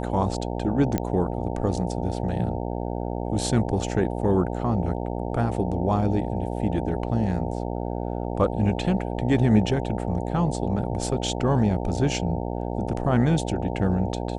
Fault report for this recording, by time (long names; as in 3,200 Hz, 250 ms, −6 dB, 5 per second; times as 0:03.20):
mains buzz 60 Hz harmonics 15 −29 dBFS
0:00.98: click −11 dBFS